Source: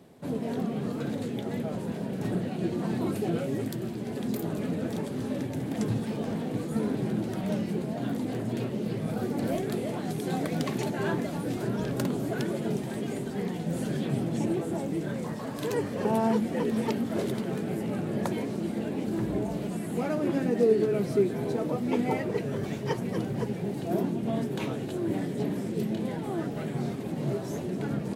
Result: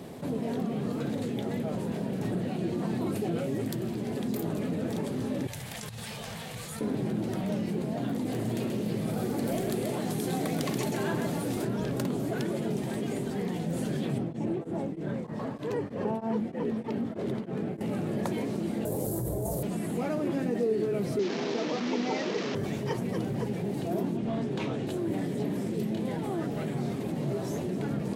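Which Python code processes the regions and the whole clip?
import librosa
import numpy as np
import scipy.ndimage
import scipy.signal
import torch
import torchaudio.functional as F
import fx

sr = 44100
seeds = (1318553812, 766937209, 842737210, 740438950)

y = fx.chain(x, sr, fx.tone_stack(knobs='10-0-10'),
    fx.over_compress(threshold_db=-45.0, ratio=-0.5), at=(5.47, 6.81))
y = fx.chain(y, sr, fx.high_shelf(hz=5700.0, db=7.0),
    fx.echo_single(ms=131, db=-6.0), at=(8.25, 11.65))
y = fx.chain(y, sr, fx.lowpass(hz=1900.0, slope=6),
    fx.tremolo_abs(hz=3.2), at=(14.18, 17.81))
y = fx.chain(y, sr, fx.curve_eq(hz=(130.0, 230.0, 520.0, 1200.0, 2600.0, 12000.0), db=(0, -16, -1, -11, -21, 15)),
    fx.env_flatten(amount_pct=100), at=(18.85, 19.63))
y = fx.chain(y, sr, fx.delta_mod(bps=32000, step_db=-28.5),
    fx.highpass(hz=190.0, slope=24), at=(21.19, 22.55))
y = fx.chain(y, sr, fx.lowpass(hz=6300.0, slope=12),
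    fx.clip_hard(threshold_db=-24.5), at=(24.17, 24.87))
y = fx.peak_eq(y, sr, hz=1500.0, db=-2.5, octaves=0.22)
y = fx.env_flatten(y, sr, amount_pct=50)
y = F.gain(torch.from_numpy(y), -6.5).numpy()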